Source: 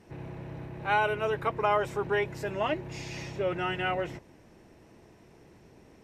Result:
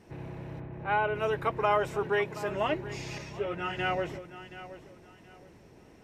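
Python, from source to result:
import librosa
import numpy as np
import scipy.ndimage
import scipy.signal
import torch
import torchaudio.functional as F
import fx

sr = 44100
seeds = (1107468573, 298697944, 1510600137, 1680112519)

y = fx.air_absorb(x, sr, metres=390.0, at=(0.59, 1.14), fade=0.02)
y = fx.highpass(y, sr, hz=130.0, slope=12, at=(2.04, 2.5))
y = fx.echo_feedback(y, sr, ms=725, feedback_pct=27, wet_db=-15)
y = fx.ensemble(y, sr, at=(3.18, 3.77))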